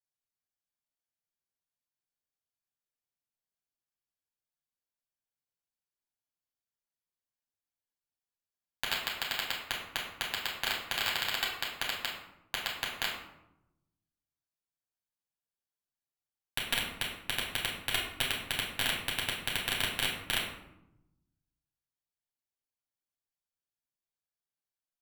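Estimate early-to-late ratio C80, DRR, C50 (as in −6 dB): 6.5 dB, −4.0 dB, 3.5 dB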